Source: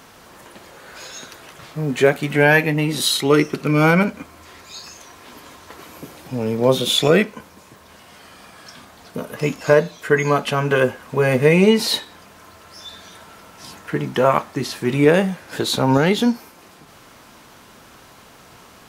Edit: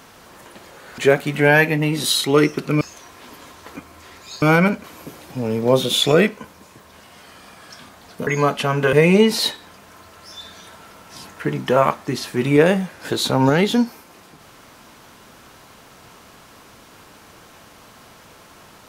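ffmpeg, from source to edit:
-filter_complex "[0:a]asplit=8[a][b][c][d][e][f][g][h];[a]atrim=end=0.982[i];[b]atrim=start=1.938:end=3.772[j];[c]atrim=start=4.848:end=5.802[k];[d]atrim=start=4.188:end=4.852[l];[e]atrim=start=3.768:end=4.192[m];[f]atrim=start=5.798:end=9.232[n];[g]atrim=start=10.148:end=10.812[o];[h]atrim=start=11.408[p];[i][j]acrossfade=d=0.004:c1=hsin:c2=hsin[q];[q][k]acrossfade=d=0.004:c1=hsin:c2=hsin[r];[r][l]acrossfade=d=0.004:c1=hsin:c2=hsin[s];[s][m]acrossfade=d=0.004:c1=hsin:c2=hsin[t];[t][n]acrossfade=d=0.004:c1=hsin:c2=hsin[u];[u][o]acrossfade=d=0.004:c1=hsin:c2=hsin[v];[v][p]acrossfade=d=0.004:c1=hsin:c2=hsin"

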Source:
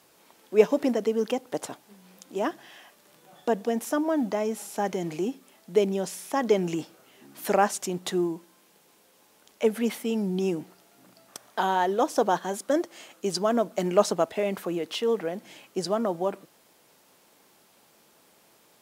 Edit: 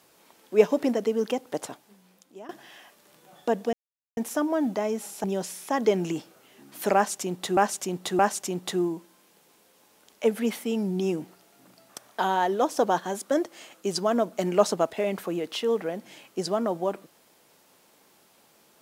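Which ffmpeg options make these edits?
-filter_complex "[0:a]asplit=6[a][b][c][d][e][f];[a]atrim=end=2.49,asetpts=PTS-STARTPTS,afade=t=out:st=1.59:d=0.9:silence=0.0944061[g];[b]atrim=start=2.49:end=3.73,asetpts=PTS-STARTPTS,afade=t=in:d=0.004:c=hsin:silence=0.0944061,afade=t=out:st=1.236:d=0.004:c=hsin,apad=pad_dur=0.44[h];[c]atrim=start=3.73:end=4.802,asetpts=PTS-STARTPTS,afade=t=in:d=0.004:c=hsin[i];[d]atrim=start=5.868:end=8.202[j];[e]atrim=start=7.578:end=8.202[k];[f]atrim=start=7.578[l];[g][h][i]concat=n=3:v=0:a=1[m];[m][j]acrossfade=d=0.004:c1=hsin:c2=hsin[n];[n][k]acrossfade=d=0.004:c1=hsin:c2=hsin[o];[o][l]acrossfade=d=0.004:c1=hsin:c2=hsin"

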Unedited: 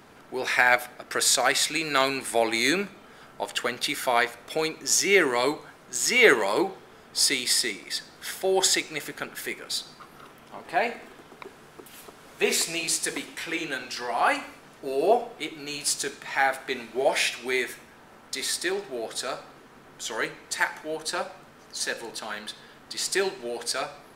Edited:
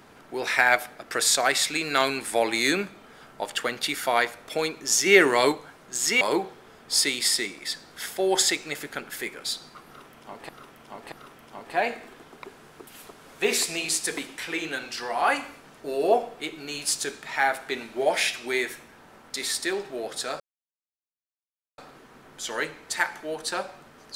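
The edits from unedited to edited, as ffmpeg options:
-filter_complex "[0:a]asplit=7[a][b][c][d][e][f][g];[a]atrim=end=5.062[h];[b]atrim=start=5.058:end=5.522,asetpts=PTS-STARTPTS,volume=3.5dB[i];[c]atrim=start=5.518:end=6.212[j];[d]atrim=start=6.458:end=10.742[k];[e]atrim=start=10.108:end=10.742[l];[f]atrim=start=10.108:end=19.39,asetpts=PTS-STARTPTS,afade=t=out:st=9.278:d=0.004:c=hsin,apad=pad_dur=1.38[m];[g]atrim=start=19.39,asetpts=PTS-STARTPTS,afade=t=in:d=0.004:c=hsin[n];[h][i]acrossfade=d=0.004:c1=hsin:c2=hsin[o];[o][j]acrossfade=d=0.004:c1=hsin:c2=hsin[p];[p][k]acrossfade=d=0.004:c1=hsin:c2=hsin[q];[q][l]acrossfade=d=0.004:c1=hsin:c2=hsin[r];[m][n]concat=n=2:v=0:a=1[s];[r][s]acrossfade=d=0.004:c1=hsin:c2=hsin"

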